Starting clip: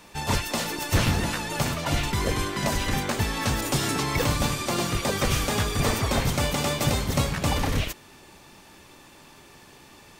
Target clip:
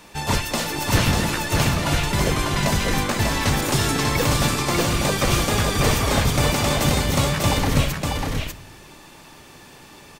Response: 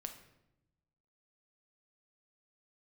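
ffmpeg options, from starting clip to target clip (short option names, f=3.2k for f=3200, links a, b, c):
-filter_complex "[0:a]aecho=1:1:594:0.668,asplit=2[a][b];[1:a]atrim=start_sample=2205[c];[b][c]afir=irnorm=-1:irlink=0,volume=-2.5dB[d];[a][d]amix=inputs=2:normalize=0"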